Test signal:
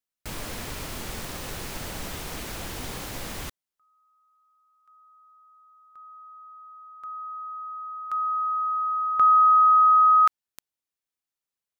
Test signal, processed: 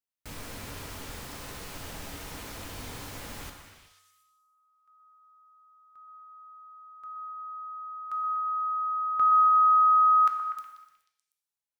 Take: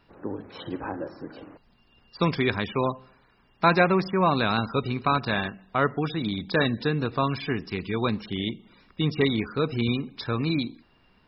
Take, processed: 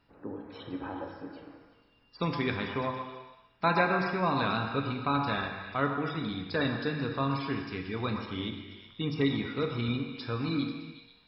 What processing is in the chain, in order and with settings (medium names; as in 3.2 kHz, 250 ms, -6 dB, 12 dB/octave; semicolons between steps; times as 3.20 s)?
feedback comb 94 Hz, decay 0.89 s, harmonics odd, mix 60%; repeats whose band climbs or falls 122 ms, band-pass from 1 kHz, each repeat 0.7 oct, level -6 dB; gated-style reverb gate 470 ms falling, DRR 4.5 dB